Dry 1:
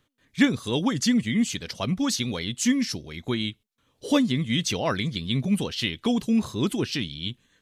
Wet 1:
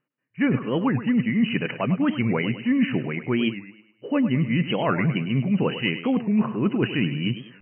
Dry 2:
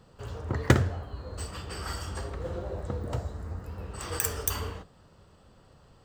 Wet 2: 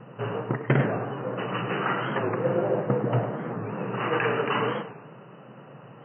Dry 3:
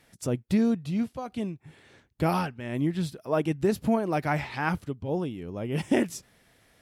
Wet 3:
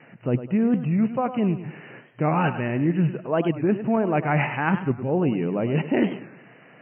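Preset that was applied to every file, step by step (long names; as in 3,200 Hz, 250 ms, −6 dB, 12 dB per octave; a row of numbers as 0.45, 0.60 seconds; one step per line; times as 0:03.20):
noise gate with hold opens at −53 dBFS
brick-wall band-pass 110–3,000 Hz
reversed playback
downward compressor 8 to 1, threshold −32 dBFS
reversed playback
high-frequency loss of the air 110 metres
on a send: feedback echo with a high-pass in the loop 103 ms, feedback 44%, high-pass 170 Hz, level −11 dB
on the sum: wow of a warped record 45 rpm, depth 160 cents
normalise the peak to −9 dBFS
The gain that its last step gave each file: +13.0, +13.5, +14.0 decibels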